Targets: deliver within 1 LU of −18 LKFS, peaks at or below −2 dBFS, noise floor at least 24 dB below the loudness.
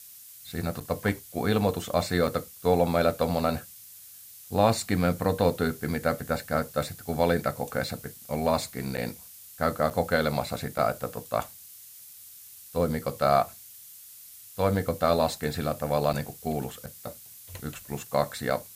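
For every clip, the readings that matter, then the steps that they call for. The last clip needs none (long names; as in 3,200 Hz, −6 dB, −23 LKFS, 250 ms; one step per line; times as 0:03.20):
number of dropouts 8; longest dropout 7.1 ms; background noise floor −48 dBFS; target noise floor −52 dBFS; integrated loudness −28.0 LKFS; sample peak −8.5 dBFS; target loudness −18.0 LKFS
→ repair the gap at 0:00.80/0:02.27/0:08.97/0:09.90/0:10.78/0:16.13/0:16.86/0:18.50, 7.1 ms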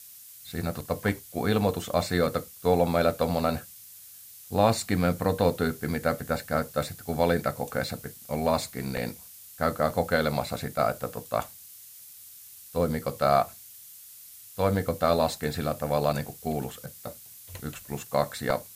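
number of dropouts 0; background noise floor −48 dBFS; target noise floor −52 dBFS
→ noise reduction from a noise print 6 dB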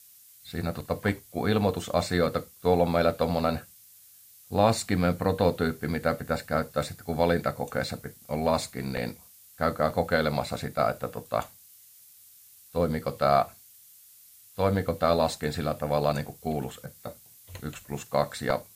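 background noise floor −54 dBFS; integrated loudness −28.0 LKFS; sample peak −8.5 dBFS; target loudness −18.0 LKFS
→ level +10 dB
brickwall limiter −2 dBFS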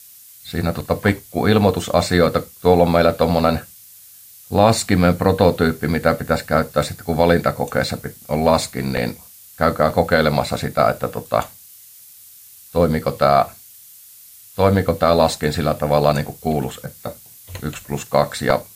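integrated loudness −18.5 LKFS; sample peak −2.0 dBFS; background noise floor −44 dBFS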